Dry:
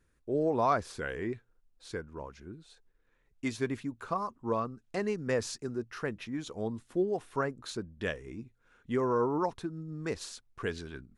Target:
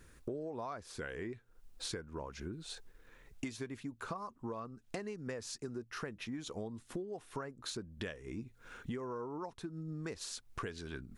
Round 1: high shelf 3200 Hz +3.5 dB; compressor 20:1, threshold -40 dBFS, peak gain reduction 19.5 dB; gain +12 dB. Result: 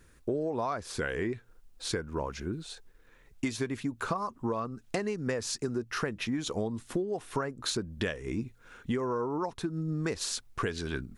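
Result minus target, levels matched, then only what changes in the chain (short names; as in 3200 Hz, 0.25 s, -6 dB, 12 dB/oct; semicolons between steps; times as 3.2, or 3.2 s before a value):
compressor: peak gain reduction -10 dB
change: compressor 20:1, threshold -50.5 dBFS, peak gain reduction 29 dB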